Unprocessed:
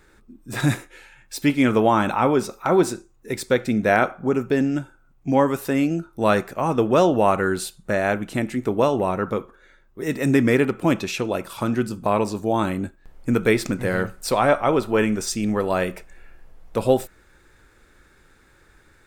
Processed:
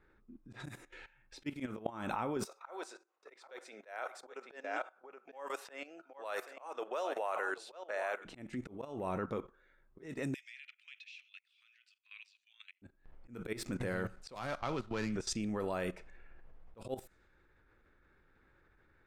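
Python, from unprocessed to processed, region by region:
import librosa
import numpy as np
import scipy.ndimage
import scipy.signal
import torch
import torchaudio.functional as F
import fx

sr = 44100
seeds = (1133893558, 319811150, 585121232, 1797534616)

y = fx.chain(x, sr, fx.highpass(hz=510.0, slope=24),
    fx.echo_single(ms=777, db=-12.0), at=(2.45, 8.25))
y = fx.chain(y, sr, fx.steep_highpass(hz=2400.0, slope=36),
    fx.high_shelf(hz=5300.0, db=-11.0), at=(10.34, 12.82))
y = fx.chain(y, sr, fx.median_filter(points=15),
    fx.peak_eq(hz=460.0, db=-10.5, octaves=2.8),
    fx.band_squash(depth_pct=40), at=(14.35, 15.16))
y = fx.env_lowpass(y, sr, base_hz=2300.0, full_db=-17.5)
y = fx.level_steps(y, sr, step_db=16)
y = fx.auto_swell(y, sr, attack_ms=263.0)
y = F.gain(torch.from_numpy(y), -4.0).numpy()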